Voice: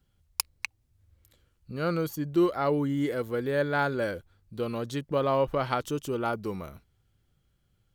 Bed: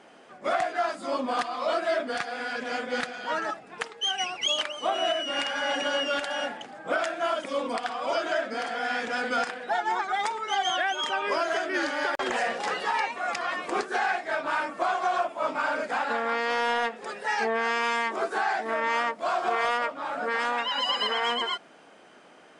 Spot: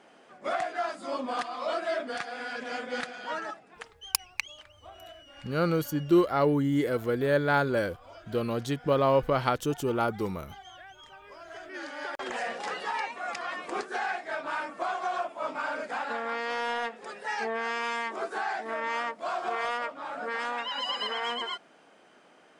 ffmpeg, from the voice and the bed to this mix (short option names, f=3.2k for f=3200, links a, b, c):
-filter_complex "[0:a]adelay=3750,volume=2dB[a];[1:a]volume=13dB,afade=t=out:st=3.24:d=0.89:silence=0.125893,afade=t=in:st=11.38:d=1.15:silence=0.141254[b];[a][b]amix=inputs=2:normalize=0"